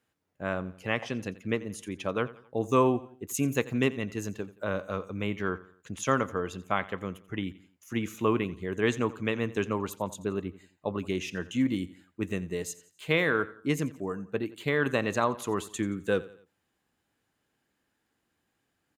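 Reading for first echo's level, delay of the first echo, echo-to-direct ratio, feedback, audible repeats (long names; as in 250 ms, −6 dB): −18.5 dB, 87 ms, −17.5 dB, 42%, 3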